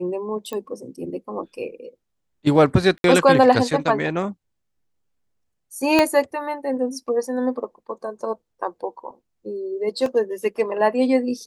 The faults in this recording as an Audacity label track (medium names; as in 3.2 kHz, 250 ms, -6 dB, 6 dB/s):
0.530000	0.530000	pop -17 dBFS
2.980000	3.040000	dropout 62 ms
5.990000	5.990000	pop -3 dBFS
10.060000	10.060000	dropout 2.4 ms